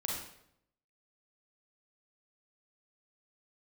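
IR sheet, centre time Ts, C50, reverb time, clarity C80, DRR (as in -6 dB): 54 ms, 0.5 dB, 0.75 s, 5.0 dB, -3.0 dB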